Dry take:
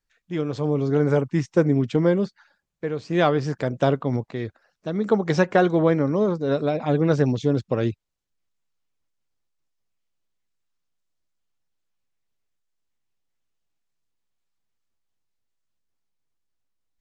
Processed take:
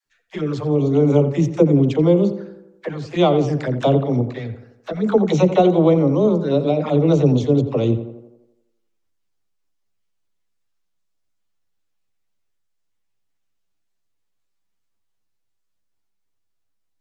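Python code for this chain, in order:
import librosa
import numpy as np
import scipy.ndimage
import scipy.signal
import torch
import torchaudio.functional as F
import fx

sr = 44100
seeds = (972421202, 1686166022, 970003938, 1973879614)

y = fx.env_flanger(x, sr, rest_ms=10.3, full_db=-19.0)
y = fx.dispersion(y, sr, late='lows', ms=59.0, hz=400.0)
y = fx.echo_tape(y, sr, ms=86, feedback_pct=59, wet_db=-10.0, lp_hz=2100.0, drive_db=6.0, wow_cents=17)
y = y * librosa.db_to_amplitude(5.5)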